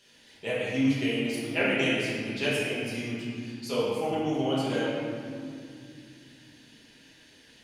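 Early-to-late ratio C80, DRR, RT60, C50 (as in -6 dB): -0.5 dB, -9.0 dB, 2.4 s, -2.5 dB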